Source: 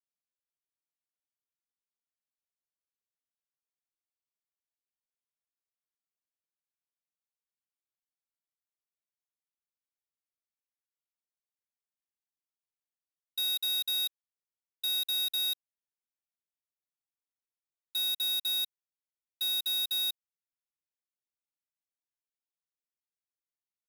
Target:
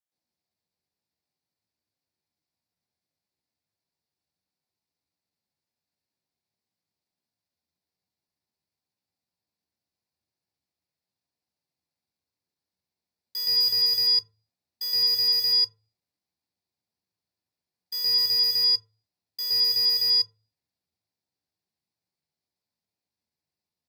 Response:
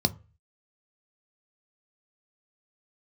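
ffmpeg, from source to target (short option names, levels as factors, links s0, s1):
-filter_complex "[0:a]asetrate=57191,aresample=44100,atempo=0.771105,asplit=2[s0][s1];[1:a]atrim=start_sample=2205,lowpass=6700,adelay=118[s2];[s1][s2]afir=irnorm=-1:irlink=0,volume=0.75[s3];[s0][s3]amix=inputs=2:normalize=0,volume=1.12"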